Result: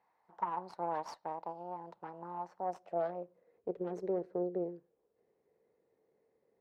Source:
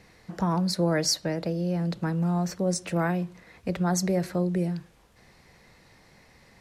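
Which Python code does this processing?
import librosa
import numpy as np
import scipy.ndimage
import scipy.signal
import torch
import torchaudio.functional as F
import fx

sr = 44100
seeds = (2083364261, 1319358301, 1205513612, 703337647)

y = fx.cheby_harmonics(x, sr, harmonics=(3, 6), levels_db=(-12, -22), full_scale_db=-12.5)
y = fx.filter_sweep_bandpass(y, sr, from_hz=900.0, to_hz=440.0, start_s=2.48, end_s=3.63, q=5.2)
y = F.gain(torch.from_numpy(y), 6.0).numpy()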